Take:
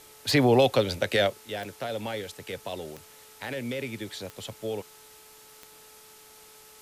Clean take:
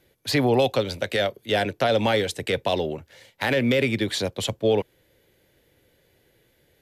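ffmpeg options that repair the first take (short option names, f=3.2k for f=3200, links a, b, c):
-af "adeclick=t=4,bandreject=f=432.4:t=h:w=4,bandreject=f=864.8:t=h:w=4,bandreject=f=1.2972k:t=h:w=4,afwtdn=0.0028,asetnsamples=n=441:p=0,asendcmd='1.36 volume volume 12dB',volume=0dB"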